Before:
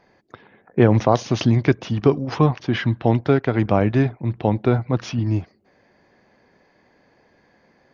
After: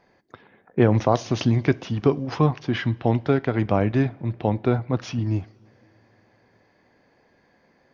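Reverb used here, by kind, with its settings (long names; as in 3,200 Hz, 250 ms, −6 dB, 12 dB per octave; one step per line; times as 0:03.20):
coupled-rooms reverb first 0.34 s, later 3.6 s, from −20 dB, DRR 17 dB
level −3 dB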